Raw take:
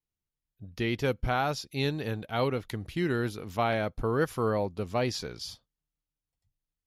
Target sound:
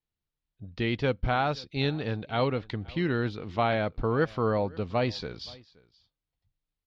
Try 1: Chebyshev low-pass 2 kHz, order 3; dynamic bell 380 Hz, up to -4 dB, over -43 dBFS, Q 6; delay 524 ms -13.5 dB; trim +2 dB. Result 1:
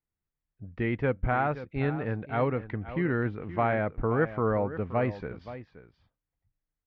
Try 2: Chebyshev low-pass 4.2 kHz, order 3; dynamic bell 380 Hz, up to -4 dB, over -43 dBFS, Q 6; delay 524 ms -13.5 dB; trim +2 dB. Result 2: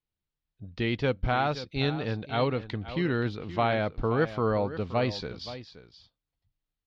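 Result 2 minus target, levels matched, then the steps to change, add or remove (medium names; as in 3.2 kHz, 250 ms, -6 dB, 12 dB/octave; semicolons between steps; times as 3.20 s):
echo-to-direct +10 dB
change: delay 524 ms -23.5 dB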